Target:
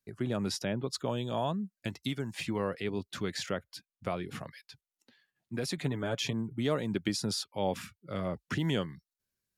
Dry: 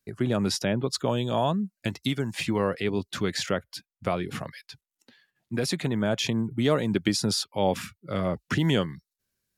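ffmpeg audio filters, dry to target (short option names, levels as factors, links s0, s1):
-filter_complex "[0:a]asettb=1/sr,asplit=3[s0][s1][s2];[s0]atrim=end=5.774[s3];[s1]atrim=start=5.77:end=6.33,asetpts=PTS-STARTPTS,afade=t=in:d=0.004:c=qsin,afade=t=out:st=0.556:d=0.004:c=qsin,aecho=1:1:7:0.58,atrim=end_sample=24696[s4];[s2]atrim=start=6.326[s5];[s3][s4]acrossfade=d=0.004:c1=hsin:c2=qsin[s6];[s6][s5]acrossfade=d=0.004:c1=qsin:c2=hsin,volume=0.447"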